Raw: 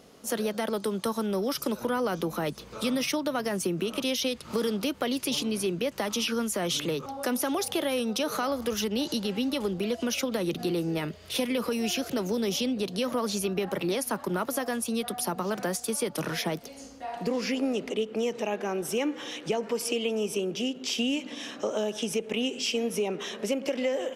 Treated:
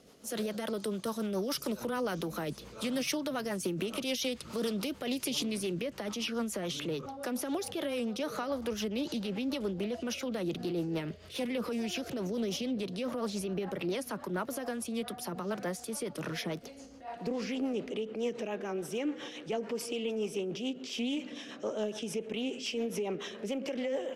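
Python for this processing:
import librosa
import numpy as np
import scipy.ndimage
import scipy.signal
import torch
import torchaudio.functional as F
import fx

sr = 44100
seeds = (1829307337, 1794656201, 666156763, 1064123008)

y = fx.high_shelf(x, sr, hz=4000.0, db=fx.steps((0.0, 3.5), (5.8, -5.0)))
y = fx.transient(y, sr, attack_db=-3, sustain_db=3)
y = fx.rotary(y, sr, hz=7.0)
y = fx.doppler_dist(y, sr, depth_ms=0.13)
y = y * librosa.db_to_amplitude(-3.0)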